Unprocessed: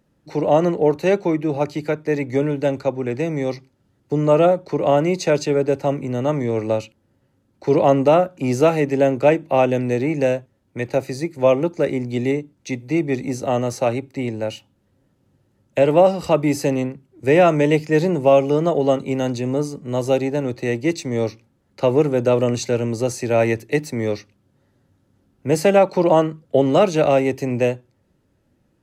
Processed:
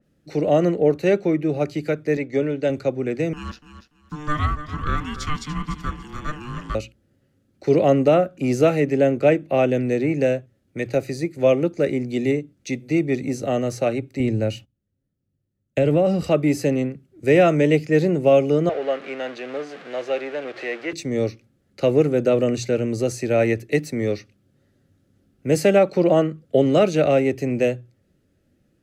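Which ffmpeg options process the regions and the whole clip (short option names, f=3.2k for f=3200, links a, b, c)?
-filter_complex "[0:a]asettb=1/sr,asplit=3[a][b][c];[a]atrim=end=2.174[d];[b]atrim=start=2.17:end=2.7,asetpts=PTS-STARTPTS,afade=t=in:d=0.004:c=qsin,afade=t=out:st=0.526:d=0.004:c=qsin,agate=range=-33dB:threshold=-29dB:ratio=3:release=100:detection=peak,lowpass=6k,bass=f=250:g=-6,treble=f=4k:g=1[e];[c]atrim=start=2.696[f];[d][e]acrossfade=d=0.004:c1=hsin:c2=qsin[g];[g][f]acrossfade=d=0.004:c1=qsin:c2=hsin,asettb=1/sr,asplit=3[h][i][j];[h]atrim=end=3.334[k];[i]atrim=start=3.33:end=6.75,asetpts=PTS-STARTPTS,afade=t=in:d=0.004:c=qsin,afade=t=out:st=3.416:d=0.004:c=qsin,highpass=470,aeval=exprs='val(0)*sin(2*PI*600*n/s)':c=same,aecho=1:1:290|580|870:0.266|0.0585|0.0129,atrim=end_sample=150822[l];[j]atrim=start=6.746[m];[k][l]acrossfade=d=0.004:c1=hsin:c2=qsin[n];[n][m]acrossfade=d=0.004:c1=qsin:c2=hsin,asettb=1/sr,asplit=3[o][p][q];[o]atrim=end=14.204[r];[p]atrim=start=14.2:end=16.23,asetpts=PTS-STARTPTS,afade=t=in:d=0.004:c=qsin,afade=t=out:st=2.026:d=0.004:c=qsin,agate=range=-21dB:threshold=-55dB:ratio=16:release=100:detection=peak,lowshelf=f=210:g=11.5,acompressor=threshold=-13dB:ratio=3:attack=3.2:release=140:knee=1:detection=peak[s];[q]atrim=start=16.226[t];[r][s]acrossfade=d=0.004:c1=hsin:c2=qsin[u];[u][t]acrossfade=d=0.004:c1=qsin:c2=hsin,asettb=1/sr,asplit=3[v][w][x];[v]atrim=end=18.694[y];[w]atrim=start=18.69:end=20.93,asetpts=PTS-STARTPTS,afade=t=in:d=0.004:c=qsin,afade=t=out:st=2.236:d=0.004:c=qsin,aeval=exprs='val(0)+0.5*0.0562*sgn(val(0))':c=same,highpass=650,lowpass=2.5k[z];[x]atrim=start=20.926[aa];[y][z]acrossfade=d=0.004:c1=hsin:c2=qsin[ab];[ab][aa]acrossfade=d=0.004:c1=qsin:c2=hsin,equalizer=f=940:t=o:w=0.43:g=-14.5,bandreject=f=60:t=h:w=6,bandreject=f=120:t=h:w=6,adynamicequalizer=threshold=0.0112:dfrequency=3200:dqfactor=0.7:tfrequency=3200:tqfactor=0.7:attack=5:release=100:ratio=0.375:range=3:mode=cutabove:tftype=highshelf"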